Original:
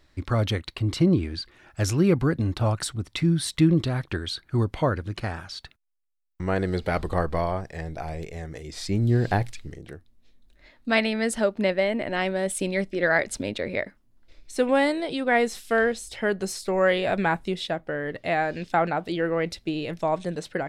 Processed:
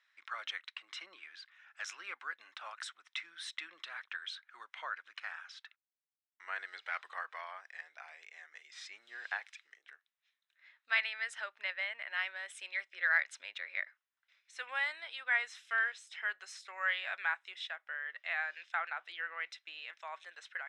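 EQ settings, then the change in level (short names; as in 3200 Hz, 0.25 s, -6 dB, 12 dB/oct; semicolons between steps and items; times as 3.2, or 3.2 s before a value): ladder high-pass 1200 Hz, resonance 30%; air absorption 110 m; notch 4500 Hz, Q 5.9; 0.0 dB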